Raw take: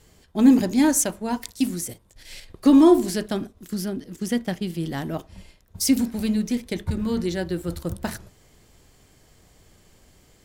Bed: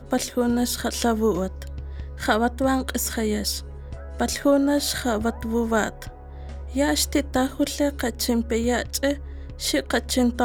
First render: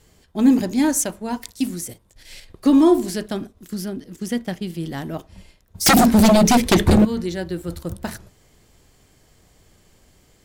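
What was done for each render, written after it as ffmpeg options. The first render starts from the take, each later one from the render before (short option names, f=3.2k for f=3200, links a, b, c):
-filter_complex "[0:a]asettb=1/sr,asplit=3[a][b][c];[a]atrim=end=5.864[d];[b]atrim=start=5.86:end=7.05,asetpts=PTS-STARTPTS,afade=t=in:d=0.004:c=qsin,afade=t=out:st=1.186:d=0.004:c=qsin,aeval=exprs='0.355*sin(PI/2*5.62*val(0)/0.355)':c=same[e];[c]atrim=start=7.046[f];[d][e]acrossfade=d=0.004:c1=hsin:c2=qsin[g];[g][f]acrossfade=d=0.004:c1=qsin:c2=hsin"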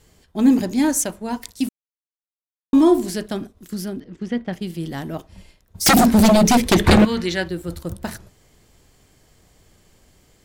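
-filter_complex "[0:a]asettb=1/sr,asplit=3[a][b][c];[a]atrim=end=4.004[d];[b]atrim=start=4:end=4.53,asetpts=PTS-STARTPTS,afade=t=in:d=0.004:c=qsin,afade=t=out:st=0.526:d=0.004:c=qsin,lowpass=2.9k[e];[c]atrim=start=4.526[f];[d][e]acrossfade=d=0.004:c1=hsin:c2=qsin[g];[g][f]acrossfade=d=0.004:c1=qsin:c2=hsin,asettb=1/sr,asplit=3[h][i][j];[h]atrim=end=6.844[k];[i]atrim=start=6.84:end=7.49,asetpts=PTS-STARTPTS,afade=t=in:d=0.004:c=qsin,afade=t=out:st=0.646:d=0.004:c=qsin,equalizer=f=2.3k:w=0.42:g=11.5[l];[j]atrim=start=7.486[m];[k][l]acrossfade=d=0.004:c1=hsin:c2=qsin[n];[n][m]acrossfade=d=0.004:c1=qsin:c2=hsin,asplit=3[o][p][q];[o]atrim=end=1.69,asetpts=PTS-STARTPTS,afade=t=out:st=1.686:d=0.004:c=hsin[r];[p]atrim=start=1.69:end=2.73,asetpts=PTS-STARTPTS,volume=0[s];[q]atrim=start=2.73,asetpts=PTS-STARTPTS,afade=t=in:d=0.004:c=hsin[t];[r][s][t]concat=n=3:v=0:a=1"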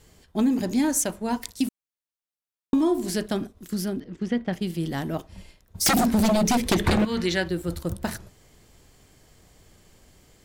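-af "acompressor=threshold=-19dB:ratio=6"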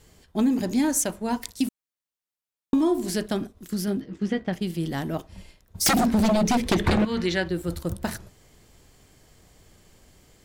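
-filter_complex "[0:a]asettb=1/sr,asplit=3[a][b][c];[a]atrim=end=3.864[d];[b]atrim=start=3.86:end=4.49,asetpts=PTS-STARTPTS,afade=t=in:d=0.004:c=qsin,afade=t=out:st=0.626:d=0.004:c=qsin,asplit=2[e][f];[f]adelay=15,volume=-5dB[g];[e][g]amix=inputs=2:normalize=0,atrim=end_sample=27783[h];[c]atrim=start=4.486[i];[d][h]acrossfade=d=0.004:c1=hsin:c2=qsin[j];[j][i]acrossfade=d=0.004:c1=qsin:c2=hsin,asettb=1/sr,asplit=3[k][l][m];[k]atrim=end=5.934[n];[l]atrim=start=5.93:end=7.55,asetpts=PTS-STARTPTS,afade=t=in:d=0.004:c=qsin,afade=t=out:st=1.616:d=0.004:c=qsin,highshelf=f=7.1k:g=-8.5[o];[m]atrim=start=7.546[p];[n][o]acrossfade=d=0.004:c1=hsin:c2=qsin[q];[q][p]acrossfade=d=0.004:c1=qsin:c2=hsin"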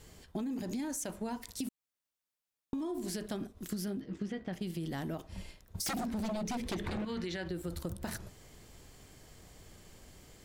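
-af "alimiter=limit=-21dB:level=0:latency=1:release=44,acompressor=threshold=-35dB:ratio=6"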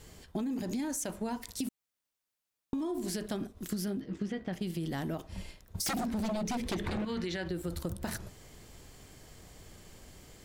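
-af "volume=2.5dB"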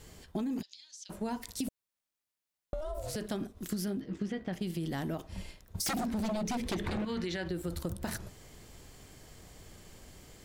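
-filter_complex "[0:a]asplit=3[a][b][c];[a]afade=t=out:st=0.61:d=0.02[d];[b]asuperpass=centerf=4200:order=4:qfactor=1.9,afade=t=in:st=0.61:d=0.02,afade=t=out:st=1.09:d=0.02[e];[c]afade=t=in:st=1.09:d=0.02[f];[d][e][f]amix=inputs=3:normalize=0,asettb=1/sr,asplit=3[g][h][i];[g]atrim=end=1.684[j];[h]atrim=start=1.68:end=3.16,asetpts=PTS-STARTPTS,afade=t=in:d=0.004:c=qsin,afade=t=out:st=1.476:d=0.004:c=qsin,aeval=exprs='val(0)*sin(2*PI*310*n/s)':c=same[k];[i]atrim=start=3.156[l];[j][k]acrossfade=d=0.004:c1=hsin:c2=qsin[m];[m][l]acrossfade=d=0.004:c1=qsin:c2=hsin"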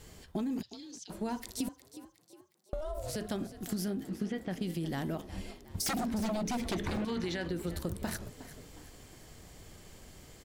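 -filter_complex "[0:a]asplit=5[a][b][c][d][e];[b]adelay=362,afreqshift=42,volume=-15dB[f];[c]adelay=724,afreqshift=84,volume=-21.7dB[g];[d]adelay=1086,afreqshift=126,volume=-28.5dB[h];[e]adelay=1448,afreqshift=168,volume=-35.2dB[i];[a][f][g][h][i]amix=inputs=5:normalize=0"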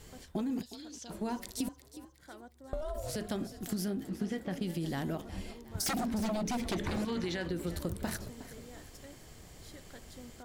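-filter_complex "[1:a]volume=-30.5dB[a];[0:a][a]amix=inputs=2:normalize=0"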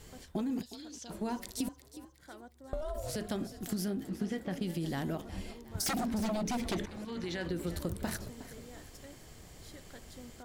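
-filter_complex "[0:a]asplit=2[a][b];[a]atrim=end=6.86,asetpts=PTS-STARTPTS,afade=t=out:st=6.856:d=0.004:c=hsin:silence=0.16788[c];[b]atrim=start=6.86,asetpts=PTS-STARTPTS,afade=t=in:d=0.61:silence=0.16788[d];[c][d]concat=n=2:v=0:a=1"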